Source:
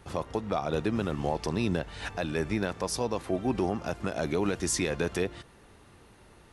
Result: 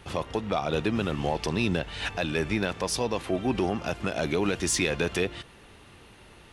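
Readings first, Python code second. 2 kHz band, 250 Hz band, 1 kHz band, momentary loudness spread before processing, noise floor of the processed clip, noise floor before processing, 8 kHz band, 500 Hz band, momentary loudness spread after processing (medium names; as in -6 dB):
+5.5 dB, +1.5 dB, +2.0 dB, 5 LU, -52 dBFS, -56 dBFS, +2.5 dB, +2.0 dB, 6 LU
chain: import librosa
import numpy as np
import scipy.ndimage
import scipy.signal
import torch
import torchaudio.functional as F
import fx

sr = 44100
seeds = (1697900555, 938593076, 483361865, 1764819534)

p1 = fx.peak_eq(x, sr, hz=2900.0, db=7.5, octaves=0.99)
p2 = 10.0 ** (-28.5 / 20.0) * np.tanh(p1 / 10.0 ** (-28.5 / 20.0))
y = p1 + F.gain(torch.from_numpy(p2), -8.0).numpy()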